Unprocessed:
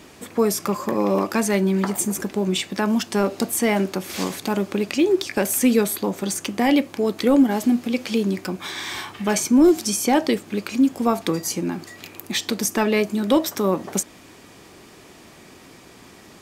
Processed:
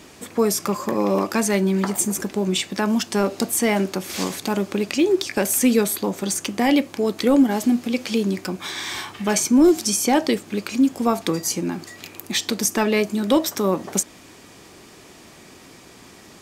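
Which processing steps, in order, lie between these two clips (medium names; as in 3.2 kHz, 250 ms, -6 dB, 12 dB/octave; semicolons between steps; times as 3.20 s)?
peaking EQ 6.6 kHz +3 dB 1.5 oct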